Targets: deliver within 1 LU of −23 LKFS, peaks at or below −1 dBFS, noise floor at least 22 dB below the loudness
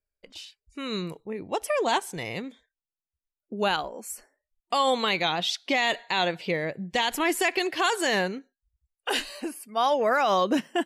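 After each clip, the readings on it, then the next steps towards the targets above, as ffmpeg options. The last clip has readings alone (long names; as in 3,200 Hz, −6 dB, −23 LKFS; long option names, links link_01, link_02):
integrated loudness −26.5 LKFS; sample peak −14.0 dBFS; target loudness −23.0 LKFS
→ -af "volume=3.5dB"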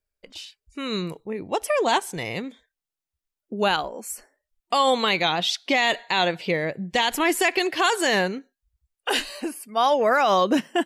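integrated loudness −23.0 LKFS; sample peak −10.5 dBFS; background noise floor −89 dBFS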